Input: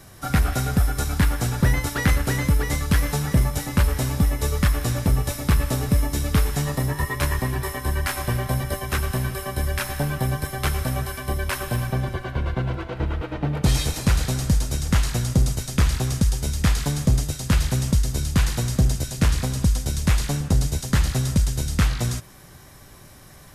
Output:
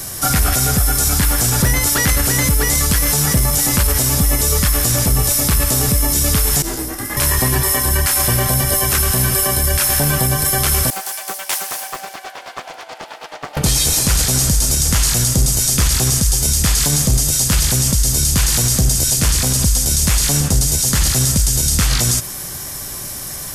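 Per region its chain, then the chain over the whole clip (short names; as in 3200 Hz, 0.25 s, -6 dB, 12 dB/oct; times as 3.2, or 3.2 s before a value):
6.62–7.17 level quantiser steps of 10 dB + ring modulator 190 Hz + detuned doubles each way 43 cents
10.9–13.57 ladder high-pass 710 Hz, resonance 60% + bell 1100 Hz -10 dB 0.71 oct + Doppler distortion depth 0.66 ms
whole clip: tone controls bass -2 dB, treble +13 dB; notch 3900 Hz, Q 23; maximiser +18 dB; gain -5 dB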